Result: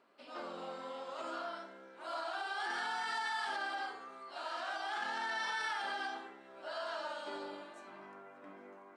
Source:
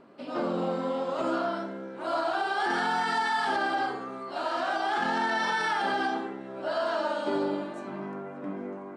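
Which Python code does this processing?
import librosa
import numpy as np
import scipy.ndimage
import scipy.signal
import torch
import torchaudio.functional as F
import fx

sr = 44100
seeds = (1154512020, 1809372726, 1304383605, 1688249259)

y = fx.highpass(x, sr, hz=1400.0, slope=6)
y = F.gain(torch.from_numpy(y), -6.0).numpy()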